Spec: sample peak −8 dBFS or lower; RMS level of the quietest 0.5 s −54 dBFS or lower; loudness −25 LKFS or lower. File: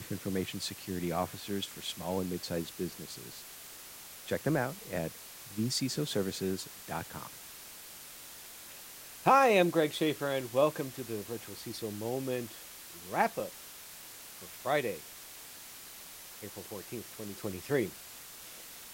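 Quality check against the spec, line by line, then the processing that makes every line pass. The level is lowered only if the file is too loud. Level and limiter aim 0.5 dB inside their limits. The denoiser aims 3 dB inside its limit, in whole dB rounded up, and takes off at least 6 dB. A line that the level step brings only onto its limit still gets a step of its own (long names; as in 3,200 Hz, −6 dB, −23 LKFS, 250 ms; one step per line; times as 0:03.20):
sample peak −12.0 dBFS: in spec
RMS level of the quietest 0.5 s −49 dBFS: out of spec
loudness −33.5 LKFS: in spec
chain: broadband denoise 8 dB, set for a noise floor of −49 dBFS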